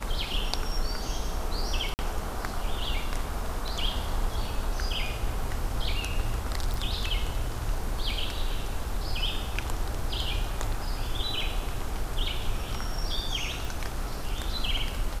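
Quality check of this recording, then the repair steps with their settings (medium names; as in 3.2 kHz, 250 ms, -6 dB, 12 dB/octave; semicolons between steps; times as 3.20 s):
1.94–1.99 s: dropout 49 ms
6.74 s: pop
13.65 s: pop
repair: de-click; interpolate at 1.94 s, 49 ms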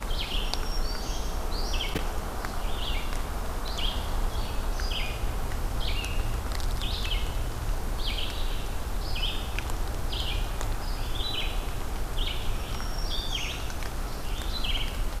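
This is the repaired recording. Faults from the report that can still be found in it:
13.65 s: pop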